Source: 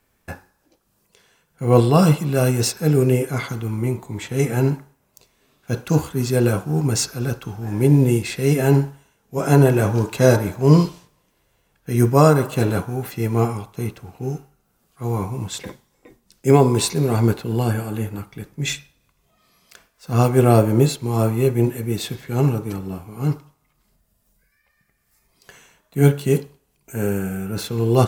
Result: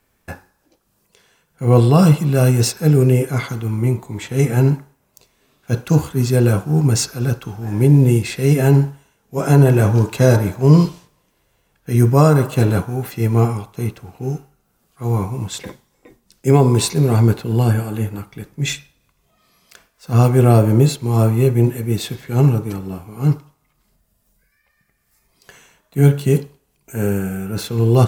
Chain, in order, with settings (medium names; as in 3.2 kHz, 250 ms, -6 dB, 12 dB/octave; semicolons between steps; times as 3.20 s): dynamic bell 120 Hz, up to +5 dB, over -26 dBFS, Q 0.91; in parallel at +2 dB: peak limiter -7 dBFS, peak gain reduction 7.5 dB; on the sum: trim -5.5 dB